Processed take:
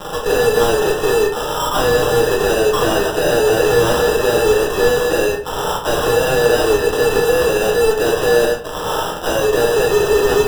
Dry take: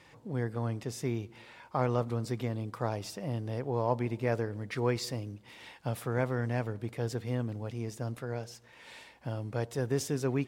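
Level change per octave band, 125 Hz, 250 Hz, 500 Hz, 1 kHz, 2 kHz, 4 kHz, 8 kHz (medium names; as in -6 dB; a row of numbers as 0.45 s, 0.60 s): +5.5 dB, +12.0 dB, +22.5 dB, +20.0 dB, +23.0 dB, +24.5 dB, +21.5 dB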